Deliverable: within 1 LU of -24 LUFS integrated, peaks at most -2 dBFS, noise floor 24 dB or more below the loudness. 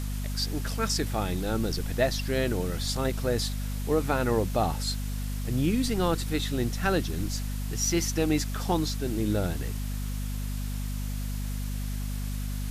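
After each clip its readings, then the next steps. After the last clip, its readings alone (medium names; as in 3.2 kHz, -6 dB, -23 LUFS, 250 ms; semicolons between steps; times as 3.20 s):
hum 50 Hz; highest harmonic 250 Hz; hum level -29 dBFS; noise floor -32 dBFS; noise floor target -54 dBFS; loudness -29.5 LUFS; peak level -12.0 dBFS; loudness target -24.0 LUFS
-> de-hum 50 Hz, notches 5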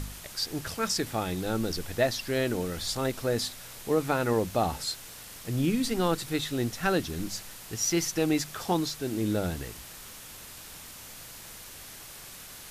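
hum not found; noise floor -46 dBFS; noise floor target -54 dBFS
-> noise print and reduce 8 dB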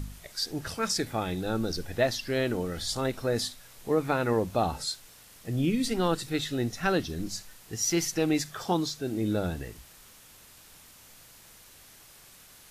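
noise floor -54 dBFS; loudness -29.5 LUFS; peak level -13.0 dBFS; loudness target -24.0 LUFS
-> trim +5.5 dB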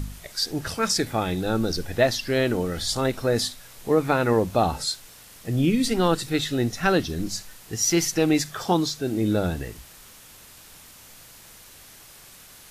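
loudness -24.0 LUFS; peak level -7.5 dBFS; noise floor -48 dBFS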